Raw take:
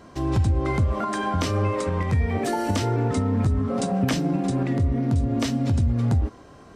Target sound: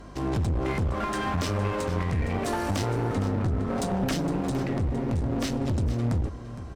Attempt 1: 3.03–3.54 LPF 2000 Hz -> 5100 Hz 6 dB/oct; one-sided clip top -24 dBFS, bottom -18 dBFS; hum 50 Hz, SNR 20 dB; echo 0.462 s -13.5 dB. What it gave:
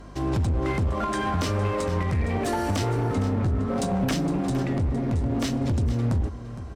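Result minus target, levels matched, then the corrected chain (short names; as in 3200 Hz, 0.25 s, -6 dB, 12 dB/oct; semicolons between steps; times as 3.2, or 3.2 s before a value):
one-sided clip: distortion -4 dB
3.03–3.54 LPF 2000 Hz -> 5100 Hz 6 dB/oct; one-sided clip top -34.5 dBFS, bottom -18 dBFS; hum 50 Hz, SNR 20 dB; echo 0.462 s -13.5 dB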